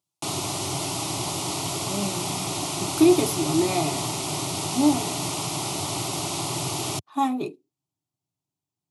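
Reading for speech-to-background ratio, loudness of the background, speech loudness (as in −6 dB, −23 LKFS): 3.0 dB, −27.5 LKFS, −24.5 LKFS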